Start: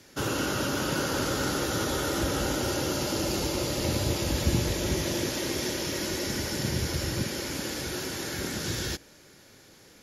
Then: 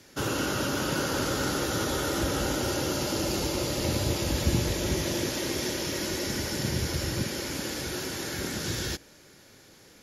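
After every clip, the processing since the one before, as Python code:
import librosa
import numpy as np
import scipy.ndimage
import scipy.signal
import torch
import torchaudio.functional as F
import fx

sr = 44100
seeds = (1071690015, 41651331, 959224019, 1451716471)

y = x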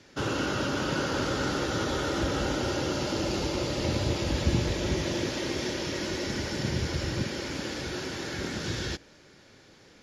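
y = scipy.signal.sosfilt(scipy.signal.butter(2, 5100.0, 'lowpass', fs=sr, output='sos'), x)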